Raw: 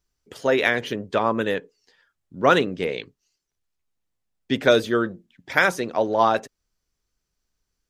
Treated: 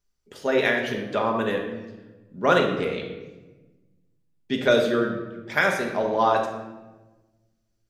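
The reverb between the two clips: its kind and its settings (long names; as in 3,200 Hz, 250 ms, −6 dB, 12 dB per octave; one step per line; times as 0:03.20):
rectangular room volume 740 cubic metres, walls mixed, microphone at 1.3 metres
level −4.5 dB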